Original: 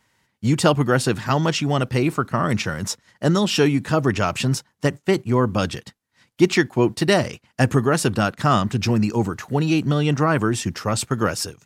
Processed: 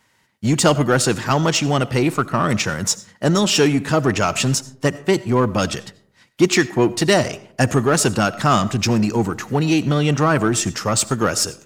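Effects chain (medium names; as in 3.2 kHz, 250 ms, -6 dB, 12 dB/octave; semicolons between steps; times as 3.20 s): dynamic bell 6.9 kHz, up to +7 dB, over -44 dBFS, Q 2.2; in parallel at -4 dB: hard clipper -19 dBFS, distortion -7 dB; on the sum: bass shelf 130 Hz -5 dB; algorithmic reverb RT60 0.63 s, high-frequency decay 0.4×, pre-delay 45 ms, DRR 17.5 dB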